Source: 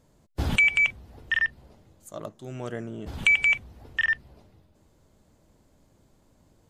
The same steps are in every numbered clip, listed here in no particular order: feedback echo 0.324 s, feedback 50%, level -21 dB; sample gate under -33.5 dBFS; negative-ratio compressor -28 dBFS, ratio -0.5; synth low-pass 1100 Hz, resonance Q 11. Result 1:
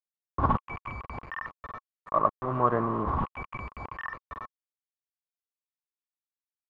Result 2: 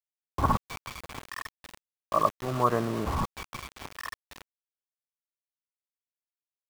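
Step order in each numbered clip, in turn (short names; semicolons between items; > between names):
feedback echo > negative-ratio compressor > sample gate > synth low-pass; feedback echo > negative-ratio compressor > synth low-pass > sample gate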